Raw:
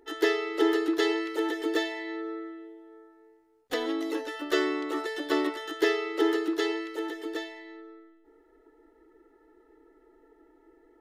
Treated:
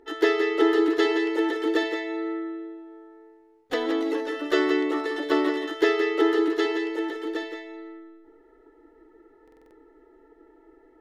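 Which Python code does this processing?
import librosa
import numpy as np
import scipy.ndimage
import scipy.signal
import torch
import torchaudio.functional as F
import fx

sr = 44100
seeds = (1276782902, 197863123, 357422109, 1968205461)

y = fx.lowpass(x, sr, hz=3300.0, slope=6)
y = y + 10.0 ** (-7.5 / 20.0) * np.pad(y, (int(173 * sr / 1000.0), 0))[:len(y)]
y = fx.buffer_glitch(y, sr, at_s=(9.43,), block=2048, repeats=5)
y = y * librosa.db_to_amplitude(4.0)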